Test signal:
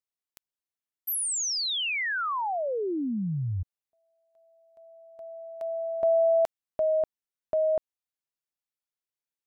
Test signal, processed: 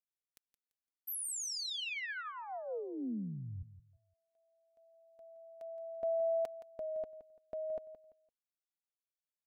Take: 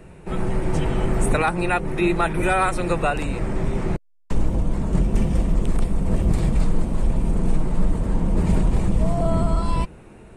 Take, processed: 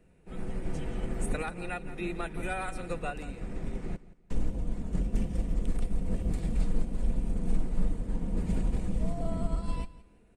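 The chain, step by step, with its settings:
parametric band 1,000 Hz −6 dB 0.85 octaves
comb filter 4.1 ms, depth 30%
repeating echo 170 ms, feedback 29%, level −13 dB
expander for the loud parts 1.5 to 1, over −29 dBFS
level −8.5 dB

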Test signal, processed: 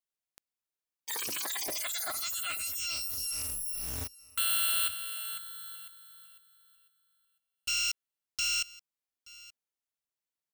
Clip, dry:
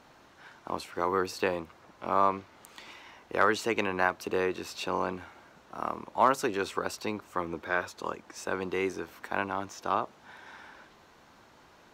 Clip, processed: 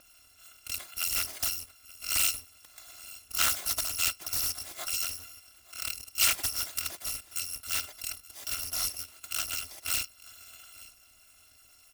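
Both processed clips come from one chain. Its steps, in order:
samples in bit-reversed order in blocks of 256 samples
single-tap delay 877 ms −21 dB
highs frequency-modulated by the lows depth 0.62 ms

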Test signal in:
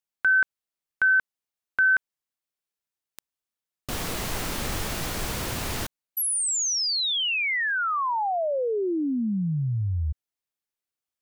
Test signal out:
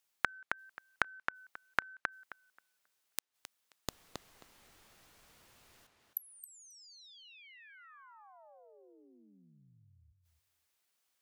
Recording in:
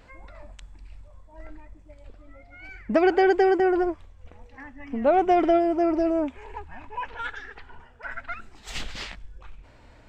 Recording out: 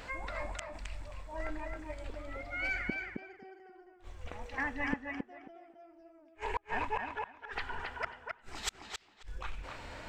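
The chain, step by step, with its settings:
low-shelf EQ 490 Hz −8.5 dB
gate with flip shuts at −31 dBFS, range −42 dB
on a send: tape delay 267 ms, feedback 20%, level −3.5 dB, low-pass 4,100 Hz
on the sum: level +10 dB

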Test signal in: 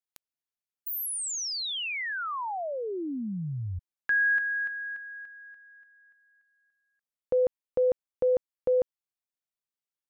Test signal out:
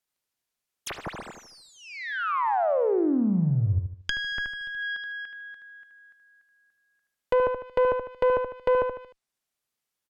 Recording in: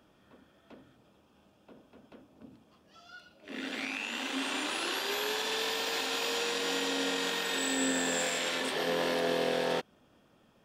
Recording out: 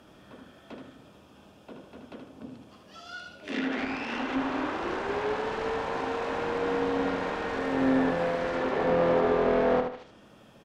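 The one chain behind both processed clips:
phase distortion by the signal itself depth 0.27 ms
asymmetric clip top −31 dBFS, bottom −23 dBFS
on a send: repeating echo 76 ms, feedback 37%, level −6 dB
on the sum: treble cut that deepens with the level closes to 1,300 Hz, closed at −32.5 dBFS
level +9 dB

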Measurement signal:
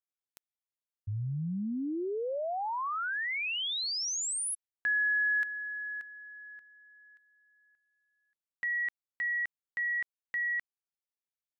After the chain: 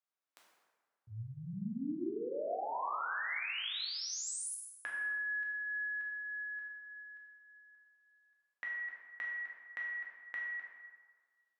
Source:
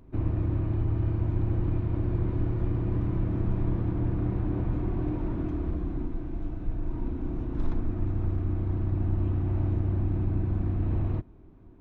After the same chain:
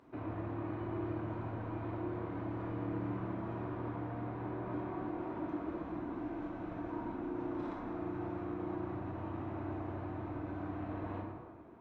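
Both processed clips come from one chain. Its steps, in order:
high-pass filter 830 Hz 12 dB per octave
spectral tilt −4 dB per octave
downward compressor 6 to 1, threshold −47 dBFS
dense smooth reverb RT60 1.6 s, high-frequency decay 0.6×, DRR −3.5 dB
level +4 dB

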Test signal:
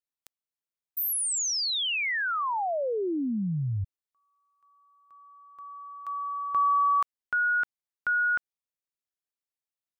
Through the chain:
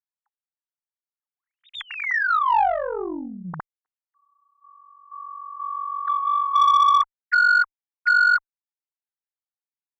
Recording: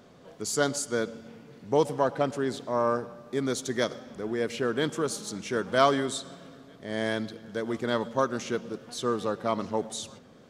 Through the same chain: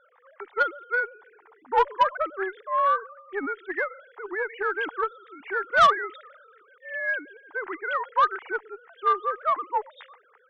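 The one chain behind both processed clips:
three sine waves on the formant tracks
harmonic generator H 2 −20 dB, 3 −20 dB, 4 −45 dB, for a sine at −12.5 dBFS
flat-topped bell 1,300 Hz +15.5 dB
soft clipping −8.5 dBFS
level −2.5 dB

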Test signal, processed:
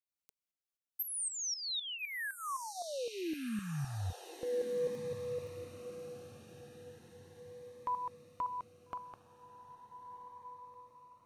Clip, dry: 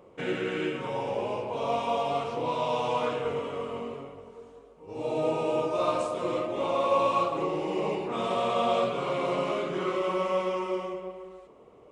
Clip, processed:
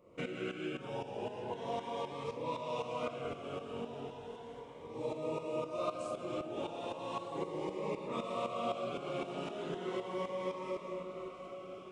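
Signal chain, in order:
downward compressor 2 to 1, threshold −36 dBFS
shaped tremolo saw up 3.9 Hz, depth 75%
on a send: feedback delay with all-pass diffusion 1,346 ms, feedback 49%, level −11 dB
on the sum: phaser whose notches keep moving one way rising 0.36 Hz
level +1 dB

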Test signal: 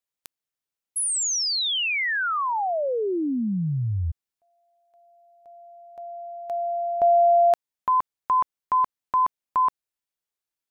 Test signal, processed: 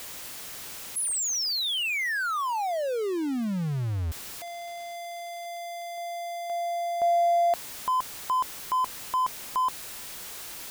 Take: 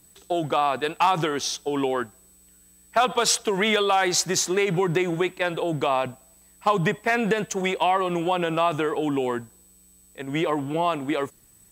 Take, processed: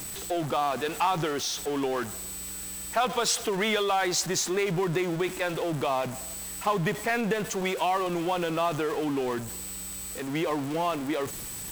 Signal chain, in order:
converter with a step at zero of −25.5 dBFS
level −6.5 dB

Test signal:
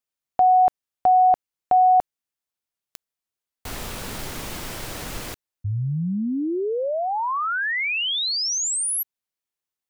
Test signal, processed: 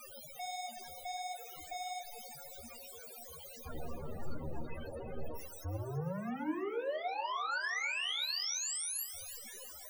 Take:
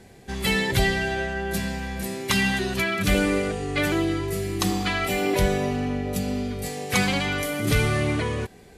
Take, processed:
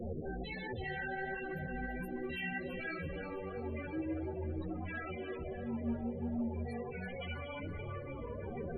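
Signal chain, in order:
sign of each sample alone
parametric band 530 Hz +6.5 dB 0.26 octaves
brickwall limiter −25.5 dBFS
tuned comb filter 52 Hz, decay 0.84 s, harmonics all, mix 60%
frequency shifter −13 Hz
tuned comb filter 78 Hz, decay 0.18 s, harmonics all, mix 90%
flanger 1.4 Hz, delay 7.9 ms, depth 9.4 ms, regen +38%
spectral peaks only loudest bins 16
on a send: echo with a time of its own for lows and highs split 470 Hz, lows 96 ms, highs 330 ms, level −11 dB
on the sum: level +5.5 dB

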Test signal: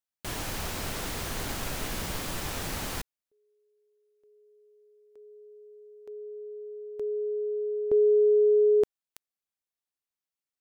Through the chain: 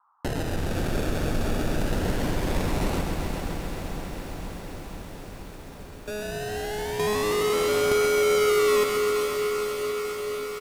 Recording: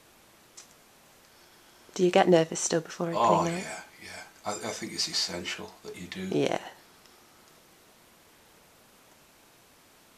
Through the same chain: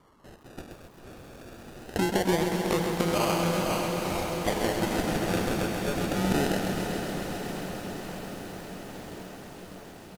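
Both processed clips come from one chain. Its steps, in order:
each half-wave held at its own peak
treble cut that deepens with the level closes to 1,000 Hz, closed at −21 dBFS
noise gate with hold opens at −45 dBFS, closes at −50 dBFS, hold 71 ms, range −14 dB
downward compressor 6 to 1, threshold −31 dBFS
sample-and-hold swept by an LFO 34×, swing 60% 0.22 Hz
noise in a band 820–1,300 Hz −71 dBFS
feedback delay with all-pass diffusion 478 ms, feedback 78%, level −7 dB
downsampling to 32,000 Hz
feedback echo at a low word length 132 ms, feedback 80%, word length 9 bits, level −7 dB
level +5.5 dB

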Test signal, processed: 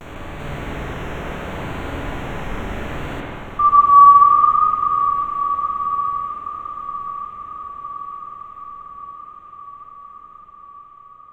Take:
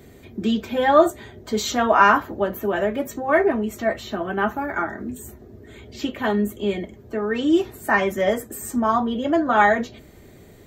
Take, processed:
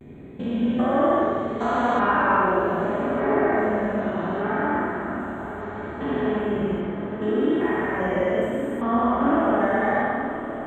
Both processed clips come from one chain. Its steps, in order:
spectrum averaged block by block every 400 ms
moving average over 9 samples
pitch vibrato 0.7 Hz 71 cents
feedback delay with all-pass diffusion 1,105 ms, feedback 65%, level −12 dB
spring reverb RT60 1.7 s, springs 47/54 ms, chirp 70 ms, DRR −4 dB
level −1.5 dB

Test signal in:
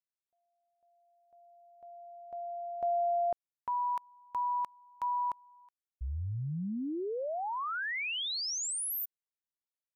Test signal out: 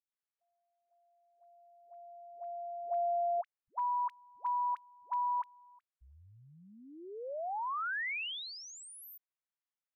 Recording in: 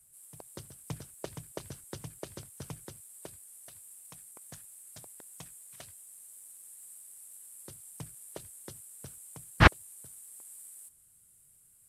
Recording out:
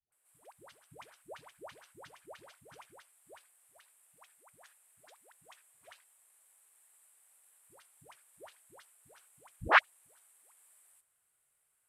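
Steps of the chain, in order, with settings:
three-way crossover with the lows and the highs turned down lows −23 dB, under 520 Hz, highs −16 dB, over 3,100 Hz
all-pass dispersion highs, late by 122 ms, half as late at 470 Hz

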